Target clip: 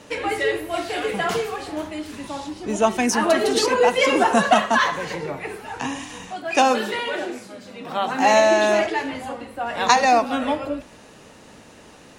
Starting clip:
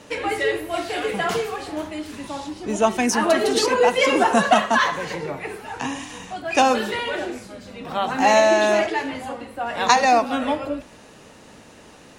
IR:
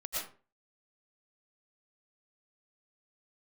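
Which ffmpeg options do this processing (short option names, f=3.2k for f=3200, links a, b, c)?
-filter_complex "[0:a]asettb=1/sr,asplit=3[a][b][c];[a]atrim=end=6.314[d];[b]atrim=start=6.31:end=8.32,asetpts=PTS-STARTPTS,afade=t=in:d=0.004:c=qsin,afade=t=out:st=2.006:d=0.004:c=qsin,highpass=160[e];[c]atrim=start=8.316[f];[d][e]acrossfade=d=0.004:c1=hsin:c2=qsin[g];[g][f]acrossfade=d=0.004:c1=qsin:c2=hsin"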